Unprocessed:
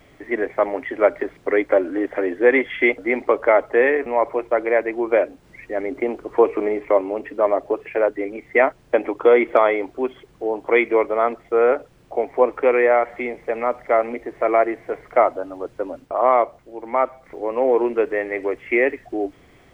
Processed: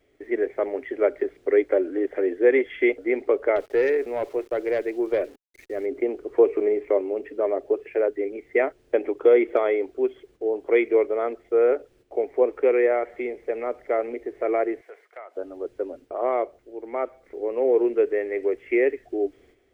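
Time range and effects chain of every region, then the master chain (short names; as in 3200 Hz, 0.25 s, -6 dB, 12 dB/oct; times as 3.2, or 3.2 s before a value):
3.56–5.86 sample gate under -40.5 dBFS + tube stage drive 10 dB, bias 0.25
14.81–15.37 HPF 950 Hz + compressor 2:1, threshold -36 dBFS
whole clip: fifteen-band EQ 160 Hz -11 dB, 400 Hz +10 dB, 1000 Hz -8 dB; gate -46 dBFS, range -8 dB; gain -7.5 dB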